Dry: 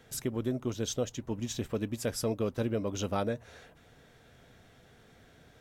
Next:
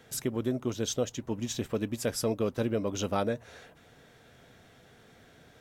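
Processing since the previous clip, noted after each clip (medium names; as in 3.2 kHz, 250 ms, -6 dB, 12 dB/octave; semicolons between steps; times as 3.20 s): bass shelf 68 Hz -9.5 dB; trim +2.5 dB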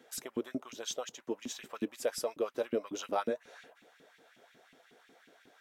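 LFO high-pass saw up 5.5 Hz 200–2800 Hz; trim -6 dB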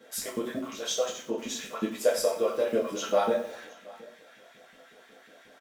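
delay 722 ms -22.5 dB; two-slope reverb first 0.38 s, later 1.8 s, from -25 dB, DRR -7 dB; bit-crushed delay 92 ms, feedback 35%, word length 7-bit, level -14 dB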